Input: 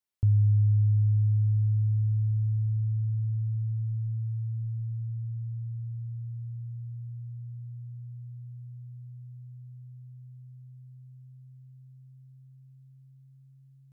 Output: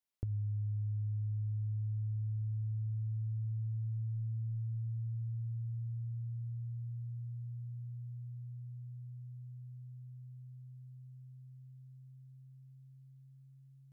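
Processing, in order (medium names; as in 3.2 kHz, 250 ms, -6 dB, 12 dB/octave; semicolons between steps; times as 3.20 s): hum notches 50/100 Hz; compression, threshold -32 dBFS, peak gain reduction 10 dB; trim -3 dB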